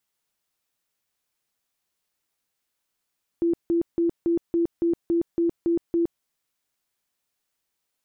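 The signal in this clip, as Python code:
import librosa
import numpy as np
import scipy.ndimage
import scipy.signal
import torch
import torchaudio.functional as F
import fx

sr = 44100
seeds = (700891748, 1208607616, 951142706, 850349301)

y = fx.tone_burst(sr, hz=338.0, cycles=39, every_s=0.28, bursts=10, level_db=-18.5)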